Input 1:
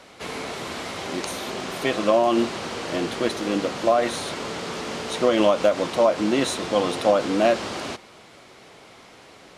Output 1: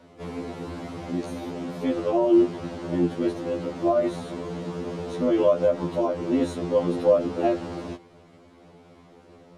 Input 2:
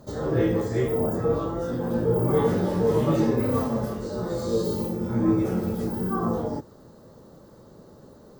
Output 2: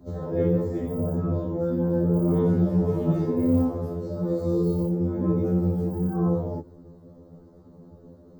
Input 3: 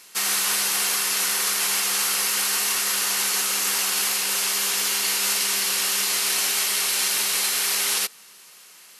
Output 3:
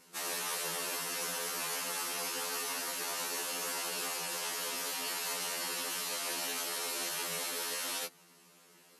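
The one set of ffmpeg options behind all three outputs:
ffmpeg -i in.wav -af "tiltshelf=frequency=790:gain=9.5,afftfilt=real='re*2*eq(mod(b,4),0)':imag='im*2*eq(mod(b,4),0)':win_size=2048:overlap=0.75,volume=-3.5dB" out.wav

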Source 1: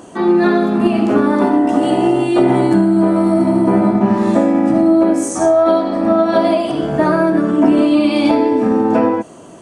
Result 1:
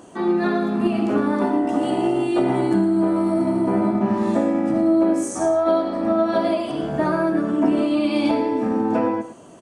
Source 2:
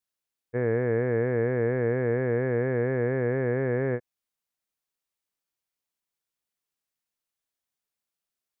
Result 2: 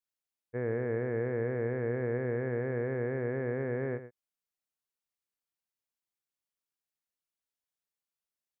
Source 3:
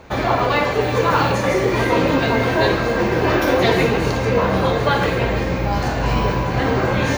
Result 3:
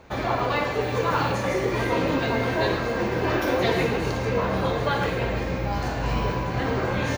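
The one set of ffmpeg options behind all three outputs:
ffmpeg -i in.wav -af "aecho=1:1:110:0.237,volume=-7dB" out.wav

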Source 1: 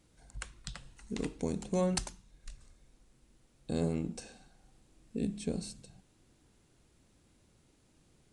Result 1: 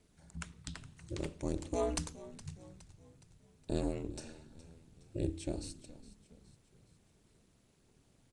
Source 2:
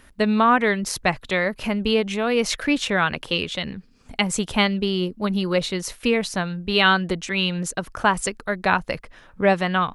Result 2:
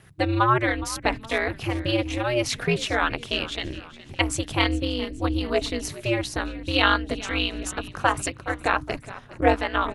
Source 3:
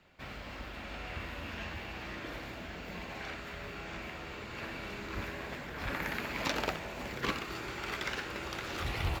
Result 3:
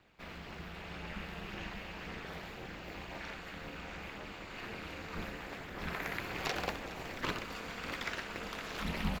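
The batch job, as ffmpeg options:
ffmpeg -i in.wav -filter_complex "[0:a]bandreject=frequency=60:width_type=h:width=6,bandreject=frequency=120:width_type=h:width=6,bandreject=frequency=180:width_type=h:width=6,aphaser=in_gain=1:out_gain=1:delay=2:decay=0.25:speed=1.9:type=triangular,aeval=exprs='val(0)*sin(2*PI*120*n/s)':channel_layout=same,asplit=5[link_01][link_02][link_03][link_04][link_05];[link_02]adelay=416,afreqshift=-58,volume=-17dB[link_06];[link_03]adelay=832,afreqshift=-116,volume=-23dB[link_07];[link_04]adelay=1248,afreqshift=-174,volume=-29dB[link_08];[link_05]adelay=1664,afreqshift=-232,volume=-35.1dB[link_09];[link_01][link_06][link_07][link_08][link_09]amix=inputs=5:normalize=0" out.wav

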